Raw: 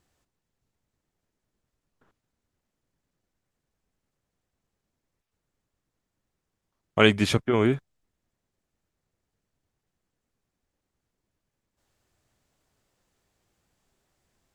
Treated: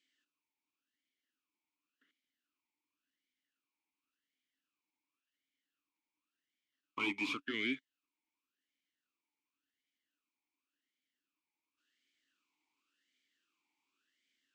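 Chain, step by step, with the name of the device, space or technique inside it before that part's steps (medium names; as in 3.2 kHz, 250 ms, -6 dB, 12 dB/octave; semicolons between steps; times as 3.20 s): frequency weighting ITU-R 468; talk box (valve stage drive 24 dB, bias 0.55; talking filter i-u 0.91 Hz); trim +7 dB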